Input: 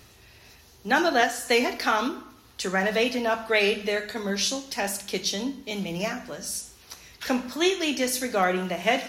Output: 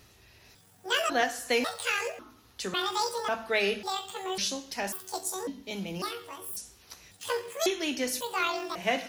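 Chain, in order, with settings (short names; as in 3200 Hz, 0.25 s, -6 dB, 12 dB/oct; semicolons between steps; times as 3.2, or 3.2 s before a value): trilling pitch shifter +11 st, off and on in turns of 0.547 s; gain -5 dB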